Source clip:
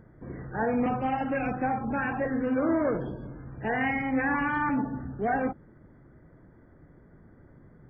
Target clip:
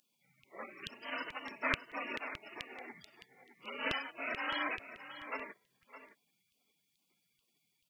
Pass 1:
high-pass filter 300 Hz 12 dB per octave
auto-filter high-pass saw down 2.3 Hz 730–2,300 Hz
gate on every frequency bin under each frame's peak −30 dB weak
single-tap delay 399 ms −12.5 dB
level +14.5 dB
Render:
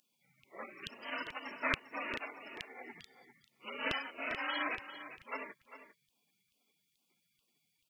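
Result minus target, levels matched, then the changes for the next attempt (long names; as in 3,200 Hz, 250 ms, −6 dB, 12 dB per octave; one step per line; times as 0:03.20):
echo 214 ms early
change: single-tap delay 613 ms −12.5 dB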